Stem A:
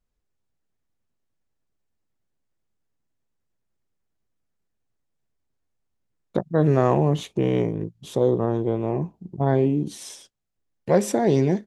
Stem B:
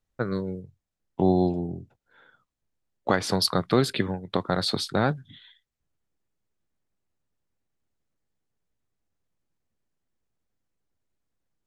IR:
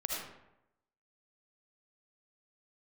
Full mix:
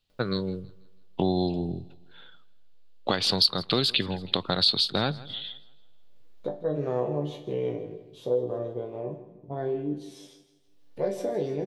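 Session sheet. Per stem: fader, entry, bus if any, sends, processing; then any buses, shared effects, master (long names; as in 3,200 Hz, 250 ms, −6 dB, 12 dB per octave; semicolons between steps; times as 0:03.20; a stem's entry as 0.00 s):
−3.0 dB, 0.10 s, send −19 dB, echo send −13.5 dB, octave-band graphic EQ 500/4,000/8,000 Hz +10/+6/−6 dB; upward compression, threshold −31 dBFS; resonators tuned to a chord G2 major, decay 0.26 s; automatic ducking −12 dB, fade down 1.70 s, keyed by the second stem
+1.0 dB, 0.00 s, muted 0:09.01–0:09.99, no send, echo send −24 dB, flat-topped bell 3,500 Hz +14.5 dB 1.1 octaves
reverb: on, RT60 0.85 s, pre-delay 35 ms
echo: repeating echo 162 ms, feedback 40%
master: downward compressor 2.5 to 1, threshold −23 dBFS, peak gain reduction 12 dB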